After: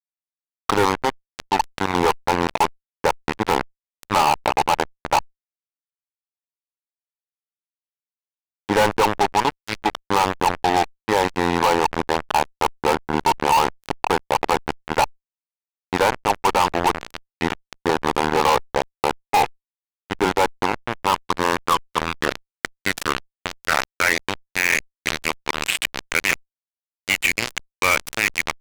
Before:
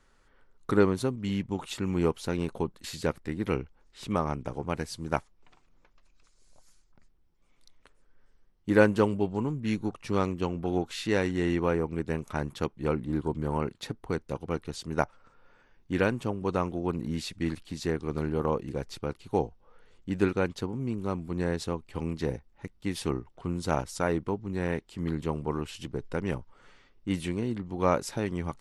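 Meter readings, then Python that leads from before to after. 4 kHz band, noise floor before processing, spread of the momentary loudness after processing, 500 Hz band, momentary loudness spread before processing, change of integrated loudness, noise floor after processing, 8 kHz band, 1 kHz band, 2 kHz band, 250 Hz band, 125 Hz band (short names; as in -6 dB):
+15.5 dB, -64 dBFS, 7 LU, +5.5 dB, 8 LU, +9.5 dB, under -85 dBFS, +15.0 dB, +17.0 dB, +15.0 dB, +1.5 dB, -1.5 dB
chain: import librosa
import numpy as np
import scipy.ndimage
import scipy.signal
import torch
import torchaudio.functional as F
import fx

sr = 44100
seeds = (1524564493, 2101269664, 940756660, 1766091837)

y = fx.rider(x, sr, range_db=5, speed_s=2.0)
y = fx.filter_sweep_bandpass(y, sr, from_hz=870.0, to_hz=2300.0, start_s=20.74, end_s=24.46, q=5.1)
y = fx.fuzz(y, sr, gain_db=45.0, gate_db=-47.0)
y = fx.env_flatten(y, sr, amount_pct=50)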